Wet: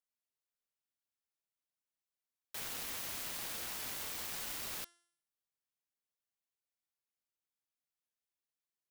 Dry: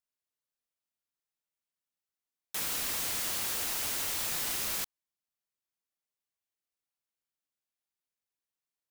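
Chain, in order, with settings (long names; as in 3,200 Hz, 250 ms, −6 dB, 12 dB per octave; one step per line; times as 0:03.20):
phase distortion by the signal itself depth 0.1 ms
hum removal 344.3 Hz, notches 31
level −5 dB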